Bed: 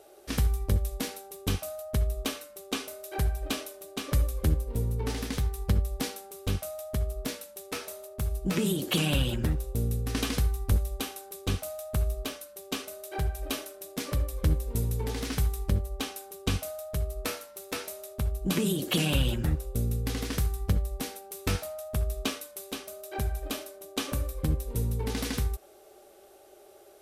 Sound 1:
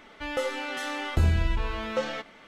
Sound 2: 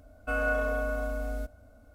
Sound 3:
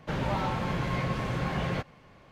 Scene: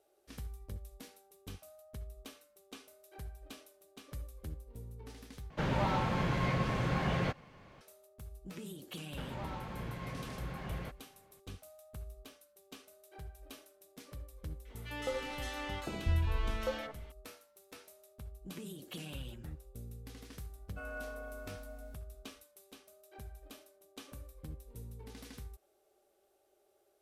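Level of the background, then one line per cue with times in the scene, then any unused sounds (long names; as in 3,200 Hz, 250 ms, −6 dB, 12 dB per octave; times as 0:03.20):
bed −18.5 dB
0:05.50: overwrite with 3 −2 dB
0:09.09: mix in 3 −13 dB
0:14.65: mix in 1 −7.5 dB + three-band delay without the direct sound highs, mids, lows 50/240 ms, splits 160/1,600 Hz
0:20.49: mix in 2 −15.5 dB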